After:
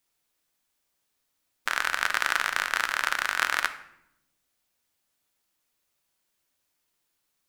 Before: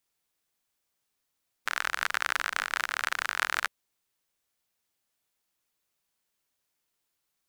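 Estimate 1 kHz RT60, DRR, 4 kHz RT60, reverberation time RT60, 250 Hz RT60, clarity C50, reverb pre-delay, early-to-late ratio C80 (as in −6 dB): 0.75 s, 9.0 dB, 0.55 s, 0.80 s, 1.4 s, 13.0 dB, 3 ms, 15.5 dB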